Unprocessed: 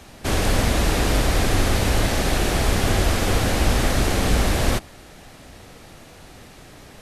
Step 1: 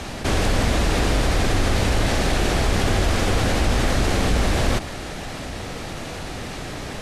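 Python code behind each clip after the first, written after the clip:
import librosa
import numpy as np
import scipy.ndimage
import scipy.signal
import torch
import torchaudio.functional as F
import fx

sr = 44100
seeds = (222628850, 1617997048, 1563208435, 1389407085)

y = scipy.signal.sosfilt(scipy.signal.bessel(2, 8100.0, 'lowpass', norm='mag', fs=sr, output='sos'), x)
y = fx.env_flatten(y, sr, amount_pct=50)
y = y * 10.0 ** (-2.0 / 20.0)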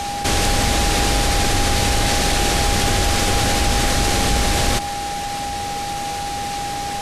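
y = x + 10.0 ** (-25.0 / 20.0) * np.sin(2.0 * np.pi * 810.0 * np.arange(len(x)) / sr)
y = fx.high_shelf(y, sr, hz=2900.0, db=11.0)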